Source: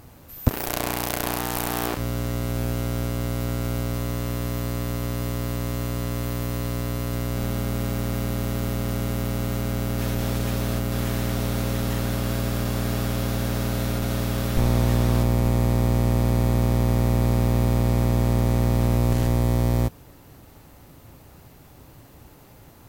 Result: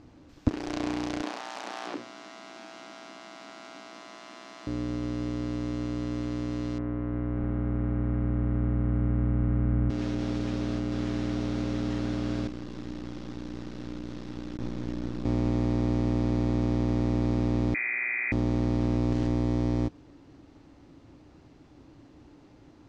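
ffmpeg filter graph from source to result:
-filter_complex "[0:a]asettb=1/sr,asplit=3[a][b][c];[a]atrim=end=1.224[d];[b]atrim=start=1.22:end=4.67,asetpts=PTS-STARTPTS,afade=t=in:d=0.004:c=qsin,afade=t=out:st=3.446:d=0.004:c=qsin,highpass=f=200:w=0.5412,highpass=f=200:w=1.3066,bandreject=f=60:t=h:w=6,bandreject=f=120:t=h:w=6,bandreject=f=180:t=h:w=6,bandreject=f=240:t=h:w=6,bandreject=f=300:t=h:w=6,bandreject=f=360:t=h:w=6,bandreject=f=420:t=h:w=6,bandreject=f=480:t=h:w=6,bandreject=f=540:t=h:w=6[e];[c]atrim=start=4.666[f];[d][e]acrossfade=d=0.004:c1=hsin:c2=qsin[g];[g][f]acrossfade=d=0.004:c1=qsin:c2=hsin,asettb=1/sr,asplit=3[h][i][j];[h]atrim=end=6.784[k];[i]atrim=start=6.78:end=9.9,asetpts=PTS-STARTPTS,afade=t=in:d=0.004:c=qsin,afade=t=out:st=3.116:d=0.004:c=qsin,lowpass=f=1.9k:w=0.5412,lowpass=f=1.9k:w=1.3066,asubboost=boost=5:cutoff=170[l];[j]atrim=start=9.896[m];[k][l]acrossfade=d=0.004:c1=hsin:c2=qsin[n];[n][m]acrossfade=d=0.004:c1=qsin:c2=hsin,asettb=1/sr,asplit=3[o][p][q];[o]atrim=end=12.474[r];[p]atrim=start=12.47:end=15.25,asetpts=PTS-STARTPTS,afade=t=in:d=0.004:c=qsin,afade=t=out:st=2.776:d=0.004:c=qsin,flanger=delay=3.4:depth=8.4:regen=-67:speed=2:shape=sinusoidal,aeval=exprs='max(val(0),0)':c=same,bandreject=f=690:w=8.9[s];[q]atrim=start=15.246[t];[r][s]acrossfade=d=0.004:c1=hsin:c2=qsin[u];[u][t]acrossfade=d=0.004:c1=qsin:c2=hsin,asettb=1/sr,asplit=3[v][w][x];[v]atrim=end=17.744[y];[w]atrim=start=17.74:end=18.32,asetpts=PTS-STARTPTS,afade=t=in:d=0.004:c=qsin,afade=t=out:st=0.576:d=0.004:c=qsin,highpass=f=140:w=0.5412,highpass=f=140:w=1.3066,equalizer=f=610:w=2.6:g=13.5,lowpass=f=2.2k:t=q:w=0.5098,lowpass=f=2.2k:t=q:w=0.6013,lowpass=f=2.2k:t=q:w=0.9,lowpass=f=2.2k:t=q:w=2.563,afreqshift=-2600[z];[x]atrim=start=18.316[aa];[y][z]acrossfade=d=0.004:c1=hsin:c2=qsin[ab];[ab][aa]acrossfade=d=0.004:c1=qsin:c2=hsin,lowpass=f=6k:w=0.5412,lowpass=f=6k:w=1.3066,equalizer=f=300:t=o:w=0.59:g=12.5,volume=-8.5dB"

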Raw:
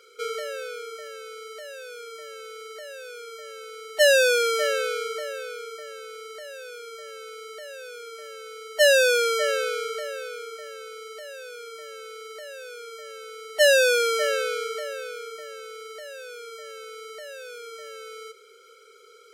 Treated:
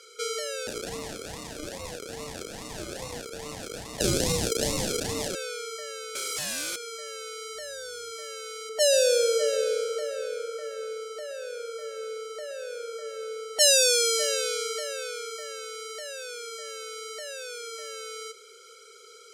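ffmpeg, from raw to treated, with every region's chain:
-filter_complex "[0:a]asettb=1/sr,asplit=3[a][b][c];[a]atrim=end=0.674[d];[b]atrim=start=0.67:end=5.35,asetpts=PTS-STARTPTS,afade=t=in:d=0.004:c=qsin,afade=t=out:st=4.676:d=0.004:c=qsin,acompressor=threshold=-26dB:ratio=2:attack=3.2:release=140:knee=1:detection=peak,acrusher=samples=38:mix=1:aa=0.000001:lfo=1:lforange=22.8:lforate=2.4,asplit=2[e][f];[f]adelay=33,volume=-3.5dB[g];[e][g]amix=inputs=2:normalize=0,atrim=end_sample=206388[h];[c]atrim=start=5.346[i];[d][h]acrossfade=d=0.004:c1=hsin:c2=qsin[j];[j][i]acrossfade=d=0.004:c1=qsin:c2=hsin,asettb=1/sr,asplit=3[k][l][m];[k]atrim=end=6.154[n];[l]atrim=start=6.15:end=6.76,asetpts=PTS-STARTPTS,afade=t=in:d=0.004:c=qsin,afade=t=out:st=0.606:d=0.004:c=qsin,highpass=f=1.5k:p=1,aeval=exprs='0.0251*sin(PI/2*8.91*val(0)/0.0251)':c=same[o];[m]atrim=start=6.756[p];[n][o]acrossfade=d=0.004:c1=hsin:c2=qsin[q];[q][p]acrossfade=d=0.004:c1=qsin:c2=hsin,asettb=1/sr,asplit=3[r][s][t];[r]atrim=end=7.544[u];[s]atrim=start=7.54:end=8.12,asetpts=PTS-STARTPTS,afade=t=in:d=0.004:c=qsin,afade=t=out:st=0.576:d=0.004:c=qsin,aeval=exprs='val(0)+0.000447*(sin(2*PI*60*n/s)+sin(2*PI*2*60*n/s)/2+sin(2*PI*3*60*n/s)/3+sin(2*PI*4*60*n/s)/4+sin(2*PI*5*60*n/s)/5)':c=same,asuperstop=centerf=2600:order=4:qfactor=3.4[v];[t]atrim=start=8.116[w];[u][v]acrossfade=d=0.004:c1=hsin:c2=qsin[x];[x][w]acrossfade=d=0.004:c1=qsin:c2=hsin,asettb=1/sr,asplit=3[y][z][aa];[y]atrim=end=8.694[ab];[z]atrim=start=8.69:end=13.59,asetpts=PTS-STARTPTS,afade=t=in:d=0.004:c=qsin,afade=t=out:st=4.896:d=0.004:c=qsin,tiltshelf=f=1.1k:g=7,asplit=2[ac][ad];[ad]adelay=122,lowpass=f=1.7k:p=1,volume=-8dB,asplit=2[ae][af];[af]adelay=122,lowpass=f=1.7k:p=1,volume=0.49,asplit=2[ag][ah];[ah]adelay=122,lowpass=f=1.7k:p=1,volume=0.49,asplit=2[ai][aj];[aj]adelay=122,lowpass=f=1.7k:p=1,volume=0.49,asplit=2[ak][al];[al]adelay=122,lowpass=f=1.7k:p=1,volume=0.49,asplit=2[am][an];[an]adelay=122,lowpass=f=1.7k:p=1,volume=0.49[ao];[ac][ae][ag][ai][ak][am][ao]amix=inputs=7:normalize=0,atrim=end_sample=216090[ap];[aa]atrim=start=13.586[aq];[ab][ap]acrossfade=d=0.004:c1=hsin:c2=qsin[ar];[ar][aq]acrossfade=d=0.004:c1=qsin:c2=hsin,lowpass=8.6k,bass=f=250:g=0,treble=f=4k:g=12,acrossover=split=470|3000[as][at][au];[at]acompressor=threshold=-36dB:ratio=6[av];[as][av][au]amix=inputs=3:normalize=0"

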